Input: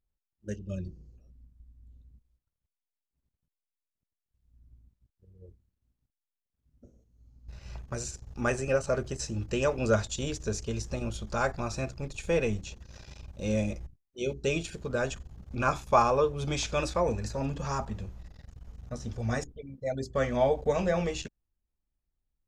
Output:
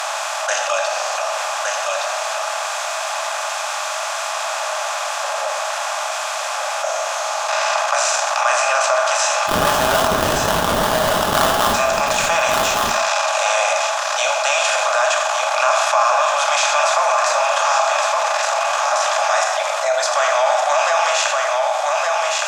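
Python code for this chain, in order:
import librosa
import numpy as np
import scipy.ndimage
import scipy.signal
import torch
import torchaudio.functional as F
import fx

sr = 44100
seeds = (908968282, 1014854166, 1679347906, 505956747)

y = fx.bin_compress(x, sr, power=0.4)
y = scipy.signal.sosfilt(scipy.signal.butter(16, 600.0, 'highpass', fs=sr, output='sos'), y)
y = fx.sample_hold(y, sr, seeds[0], rate_hz=2300.0, jitter_pct=20, at=(9.46, 11.73), fade=0.02)
y = y + 10.0 ** (-8.0 / 20.0) * np.pad(y, (int(1165 * sr / 1000.0), 0))[:len(y)]
y = fx.rev_gated(y, sr, seeds[1], gate_ms=230, shape='falling', drr_db=5.5)
y = fx.env_flatten(y, sr, amount_pct=70)
y = F.gain(torch.from_numpy(y), 2.0).numpy()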